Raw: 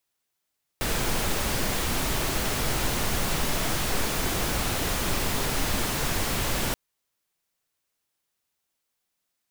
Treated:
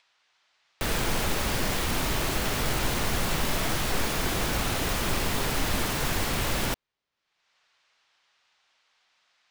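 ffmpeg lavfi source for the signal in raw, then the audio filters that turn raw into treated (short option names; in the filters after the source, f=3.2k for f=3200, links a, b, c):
-f lavfi -i "anoisesrc=c=pink:a=0.257:d=5.93:r=44100:seed=1"
-filter_complex "[0:a]acrossover=split=680|5100[a][b][c];[b]acompressor=mode=upward:threshold=-53dB:ratio=2.5[d];[c]acrusher=bits=4:mix=0:aa=0.5[e];[a][d][e]amix=inputs=3:normalize=0"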